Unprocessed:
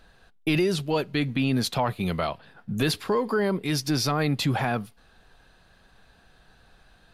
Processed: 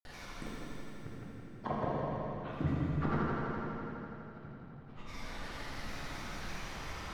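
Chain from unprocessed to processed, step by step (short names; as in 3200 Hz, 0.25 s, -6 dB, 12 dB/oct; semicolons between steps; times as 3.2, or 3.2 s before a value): treble ducked by the level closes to 470 Hz, closed at -24 dBFS; limiter -26 dBFS, peak gain reduction 10 dB; compressor 1.5:1, threshold -38 dBFS, peak gain reduction 3.5 dB; flipped gate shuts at -30 dBFS, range -36 dB; grains, pitch spread up and down by 7 st; multi-head echo 83 ms, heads first and second, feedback 74%, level -10 dB; plate-style reverb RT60 3.3 s, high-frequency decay 0.8×, DRR -5.5 dB; gain +8 dB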